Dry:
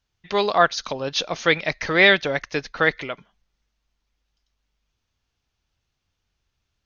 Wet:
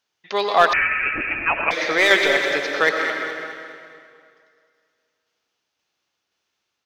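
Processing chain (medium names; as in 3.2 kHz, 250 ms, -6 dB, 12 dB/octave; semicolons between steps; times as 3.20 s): high-pass 340 Hz 12 dB/octave; in parallel at -5 dB: wavefolder -11 dBFS; on the sum: tremolo saw down 1.9 Hz, depth 50%; on a send: feedback delay 208 ms, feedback 46%, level -9.5 dB; on the sum: plate-style reverb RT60 2.2 s, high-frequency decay 0.85×, pre-delay 80 ms, DRR 2.5 dB; 0.73–1.71 s: frequency inversion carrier 3 kHz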